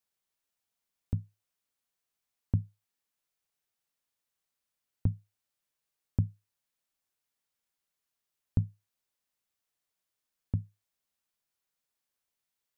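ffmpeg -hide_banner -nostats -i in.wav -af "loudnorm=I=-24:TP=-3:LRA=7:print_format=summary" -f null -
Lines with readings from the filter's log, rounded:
Input Integrated:    -36.2 LUFS
Input True Peak:     -13.4 dBTP
Input LRA:             5.9 LU
Input Threshold:     -47.1 LUFS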